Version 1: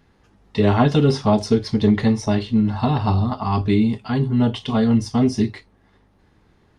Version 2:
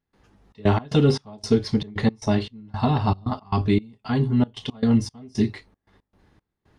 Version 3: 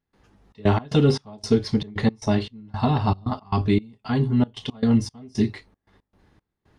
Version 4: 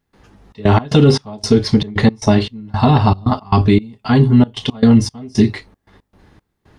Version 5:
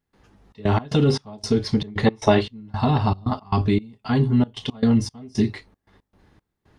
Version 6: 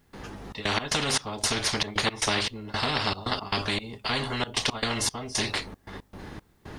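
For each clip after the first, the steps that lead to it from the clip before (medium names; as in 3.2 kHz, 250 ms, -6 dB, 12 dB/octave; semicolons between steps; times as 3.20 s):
trance gate ".xxx.x.xx." 115 bpm -24 dB; trim -1.5 dB
no audible change
loudness maximiser +11.5 dB; trim -1 dB
time-frequency box 2.06–2.41 s, 310–4000 Hz +8 dB; trim -8 dB
spectrum-flattening compressor 4:1; trim -4 dB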